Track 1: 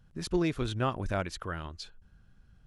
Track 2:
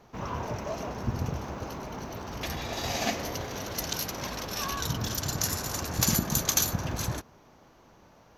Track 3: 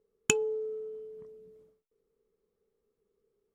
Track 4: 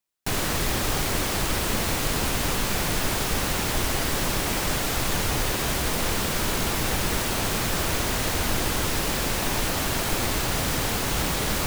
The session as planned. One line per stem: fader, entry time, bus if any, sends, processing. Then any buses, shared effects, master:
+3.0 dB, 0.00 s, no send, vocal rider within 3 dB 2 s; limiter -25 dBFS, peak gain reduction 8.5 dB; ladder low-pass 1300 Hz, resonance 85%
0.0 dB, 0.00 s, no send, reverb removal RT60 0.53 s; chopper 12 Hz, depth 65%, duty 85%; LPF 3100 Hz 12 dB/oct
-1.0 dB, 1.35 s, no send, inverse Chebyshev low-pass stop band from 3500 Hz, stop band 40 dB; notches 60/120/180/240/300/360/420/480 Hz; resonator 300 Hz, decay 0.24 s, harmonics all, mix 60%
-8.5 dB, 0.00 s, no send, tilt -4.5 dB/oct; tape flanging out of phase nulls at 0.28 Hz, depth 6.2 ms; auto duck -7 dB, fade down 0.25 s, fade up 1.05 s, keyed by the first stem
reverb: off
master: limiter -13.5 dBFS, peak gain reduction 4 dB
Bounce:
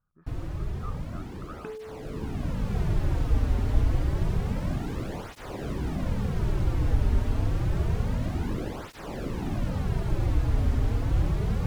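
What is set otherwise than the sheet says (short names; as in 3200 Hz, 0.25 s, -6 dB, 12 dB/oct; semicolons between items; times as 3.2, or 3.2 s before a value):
stem 1 +3.0 dB -> -7.5 dB; stem 2: muted; master: missing limiter -13.5 dBFS, peak gain reduction 4 dB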